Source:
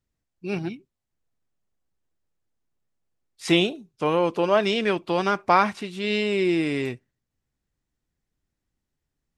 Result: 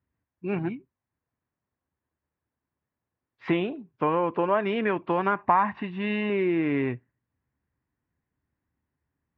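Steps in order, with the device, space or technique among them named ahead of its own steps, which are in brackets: 5.37–6.30 s: comb 1.1 ms, depth 50%; bass amplifier (compression 3:1, threshold -23 dBFS, peak gain reduction 9 dB; cabinet simulation 75–2400 Hz, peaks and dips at 76 Hz +8 dB, 120 Hz +4 dB, 270 Hz +4 dB, 1 kHz +7 dB, 1.7 kHz +4 dB)

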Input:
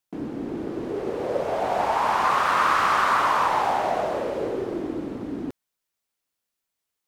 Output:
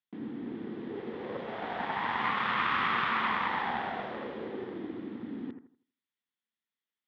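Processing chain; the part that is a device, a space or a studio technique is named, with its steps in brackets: analogue delay pedal into a guitar amplifier (bucket-brigade echo 81 ms, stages 1024, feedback 31%, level -8 dB; valve stage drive 13 dB, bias 0.75; cabinet simulation 110–3800 Hz, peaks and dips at 220 Hz +9 dB, 610 Hz -9 dB, 1.9 kHz +8 dB, 3.4 kHz +9 dB); trim -6.5 dB

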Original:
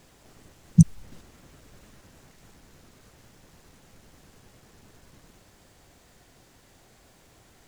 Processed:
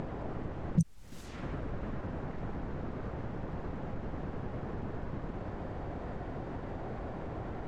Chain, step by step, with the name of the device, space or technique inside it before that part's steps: level-controlled noise filter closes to 870 Hz, open at -29.5 dBFS; upward and downward compression (upward compressor, threshold -51 dBFS; compression 4:1, threshold -51 dBFS, peak gain reduction 34 dB); trim +18 dB

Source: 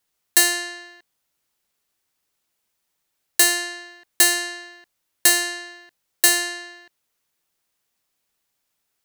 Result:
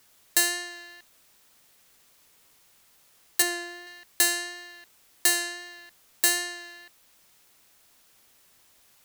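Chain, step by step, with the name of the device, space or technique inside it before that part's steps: 3.42–3.87 s: tilt EQ -2.5 dB/octave; noise-reduction cassette on a plain deck (tape noise reduction on one side only encoder only; wow and flutter 11 cents; white noise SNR 28 dB); trim -6.5 dB

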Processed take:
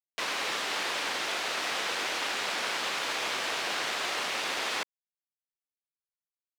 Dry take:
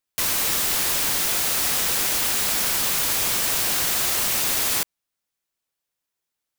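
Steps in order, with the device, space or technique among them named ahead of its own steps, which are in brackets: phone line with mismatched companding (band-pass 370–3400 Hz; companding laws mixed up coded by A)

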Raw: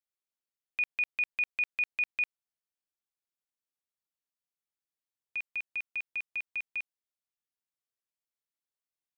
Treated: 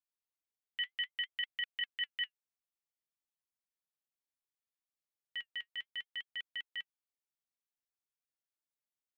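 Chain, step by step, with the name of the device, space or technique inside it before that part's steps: alien voice (ring modulator 550 Hz; flange 0.62 Hz, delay 0.8 ms, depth 4.3 ms, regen -67%); trim +1 dB

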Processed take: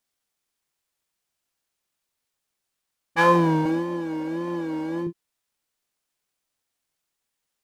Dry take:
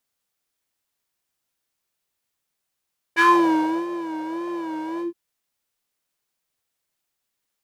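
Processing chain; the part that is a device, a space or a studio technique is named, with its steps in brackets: octave pedal (harmony voices -12 st -2 dB); 3.65–5.07 s: comb 3.6 ms, depth 88%; trim -3.5 dB

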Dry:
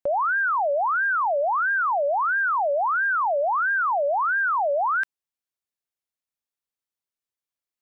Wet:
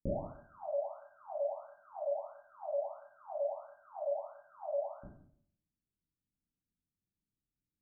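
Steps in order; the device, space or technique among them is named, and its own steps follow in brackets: next room (low-pass 260 Hz 24 dB/octave; reverberation RT60 0.60 s, pre-delay 13 ms, DRR -8.5 dB); trim +7.5 dB

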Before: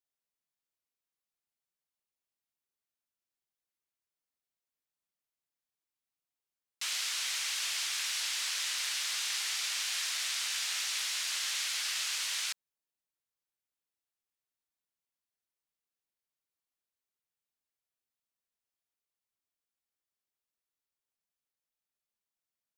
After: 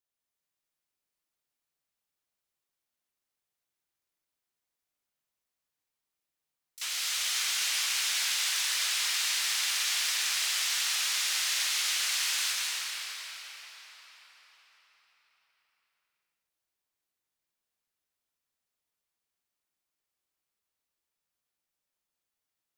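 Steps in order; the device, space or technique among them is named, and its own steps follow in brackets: shimmer-style reverb (harmony voices +12 st -9 dB; reverberation RT60 5.2 s, pre-delay 118 ms, DRR -3.5 dB)

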